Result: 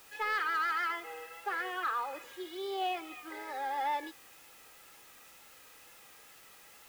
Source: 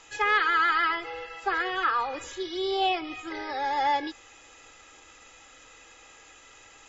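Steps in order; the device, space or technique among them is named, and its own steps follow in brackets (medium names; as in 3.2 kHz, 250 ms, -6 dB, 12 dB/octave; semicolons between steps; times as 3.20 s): tape answering machine (band-pass 350–3100 Hz; saturation -17.5 dBFS, distortion -19 dB; wow and flutter; white noise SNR 20 dB); trim -6.5 dB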